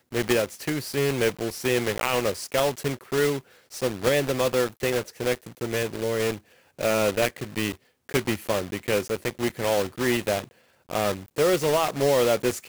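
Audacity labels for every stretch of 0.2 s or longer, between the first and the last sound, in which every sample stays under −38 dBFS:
3.400000	3.720000	silence
6.380000	6.790000	silence
7.740000	8.090000	silence
10.440000	10.890000	silence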